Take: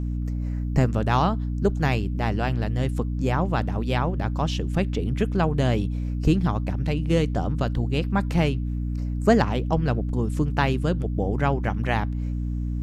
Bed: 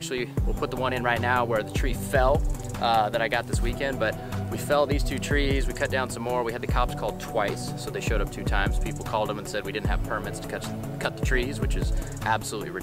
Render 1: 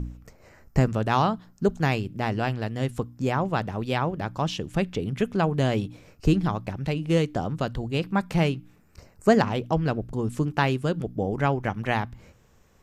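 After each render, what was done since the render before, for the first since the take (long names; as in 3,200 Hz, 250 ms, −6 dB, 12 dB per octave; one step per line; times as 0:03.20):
hum removal 60 Hz, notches 5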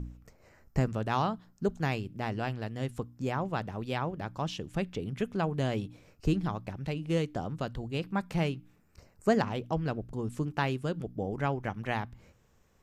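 level −7 dB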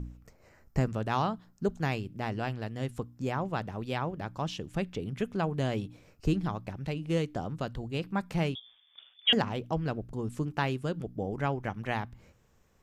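0:08.55–0:09.33: voice inversion scrambler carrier 3,500 Hz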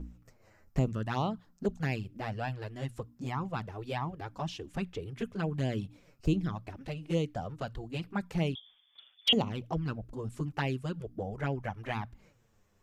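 flanger swept by the level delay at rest 10.5 ms, full sweep at −24 dBFS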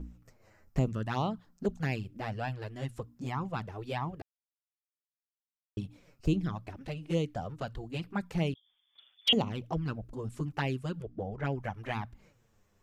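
0:04.22–0:05.77: silence
0:08.54–0:09.28: fade in linear, from −22.5 dB
0:11.02–0:11.45: high-frequency loss of the air 120 metres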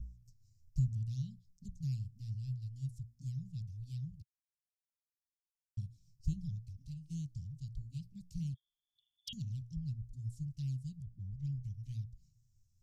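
elliptic band-stop filter 130–5,400 Hz, stop band 60 dB
high-shelf EQ 7,200 Hz −10 dB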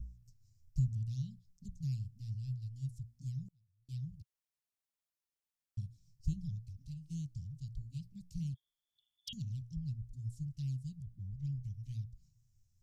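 0:03.48–0:03.89: gate with flip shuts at −48 dBFS, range −31 dB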